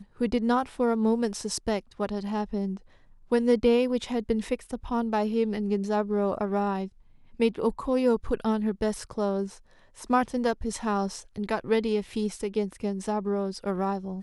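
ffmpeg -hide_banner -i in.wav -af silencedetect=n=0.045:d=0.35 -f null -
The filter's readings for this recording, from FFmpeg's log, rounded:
silence_start: 2.73
silence_end: 3.32 | silence_duration: 0.59
silence_start: 6.85
silence_end: 7.40 | silence_duration: 0.55
silence_start: 9.44
silence_end: 10.10 | silence_duration: 0.66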